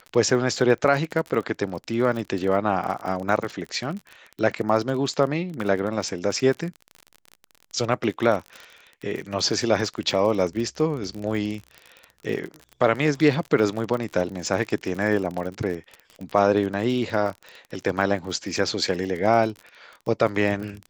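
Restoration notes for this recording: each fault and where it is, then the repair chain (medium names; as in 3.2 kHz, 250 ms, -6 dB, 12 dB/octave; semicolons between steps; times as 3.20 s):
crackle 37 per s -29 dBFS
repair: de-click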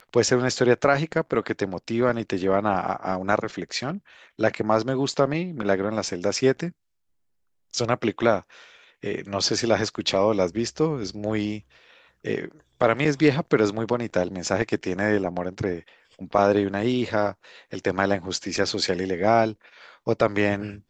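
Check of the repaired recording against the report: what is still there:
nothing left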